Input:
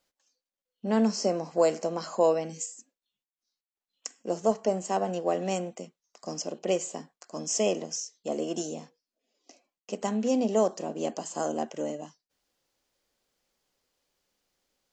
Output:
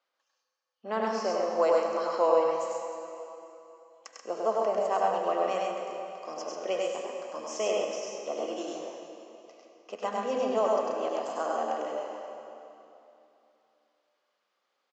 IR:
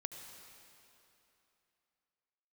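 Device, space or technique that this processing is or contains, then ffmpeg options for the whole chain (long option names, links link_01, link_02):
station announcement: -filter_complex "[0:a]highpass=490,lowpass=3500,equalizer=frequency=1200:width_type=o:width=0.42:gain=8,aecho=1:1:99.13|134.1:0.794|0.562[link_01];[1:a]atrim=start_sample=2205[link_02];[link_01][link_02]afir=irnorm=-1:irlink=0,volume=2dB"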